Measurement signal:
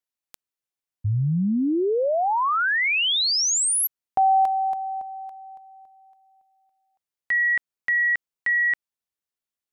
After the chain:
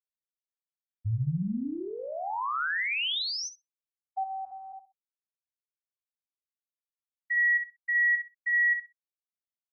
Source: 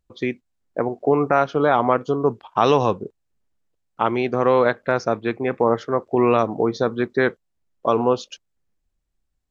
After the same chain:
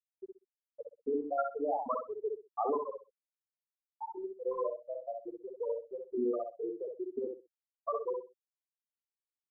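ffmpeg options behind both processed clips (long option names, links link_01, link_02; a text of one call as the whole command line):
ffmpeg -i in.wav -filter_complex "[0:a]afftfilt=real='re*gte(hypot(re,im),0.794)':imag='im*gte(hypot(re,im),0.794)':win_size=1024:overlap=0.75,equalizer=frequency=470:width_type=o:width=1.7:gain=-10.5,asplit=2[link_01][link_02];[link_02]adelay=63,lowpass=frequency=2000:poles=1,volume=-3.5dB,asplit=2[link_03][link_04];[link_04]adelay=63,lowpass=frequency=2000:poles=1,volume=0.23,asplit=2[link_05][link_06];[link_06]adelay=63,lowpass=frequency=2000:poles=1,volume=0.23[link_07];[link_01][link_03][link_05][link_07]amix=inputs=4:normalize=0,volume=-5dB" out.wav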